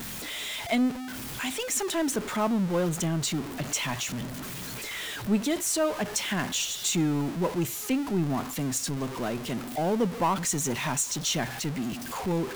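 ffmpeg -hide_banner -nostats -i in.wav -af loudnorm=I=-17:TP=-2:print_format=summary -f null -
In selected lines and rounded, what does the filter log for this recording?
Input Integrated:    -28.6 LUFS
Input True Peak:     -14.9 dBTP
Input LRA:             1.1 LU
Input Threshold:     -38.6 LUFS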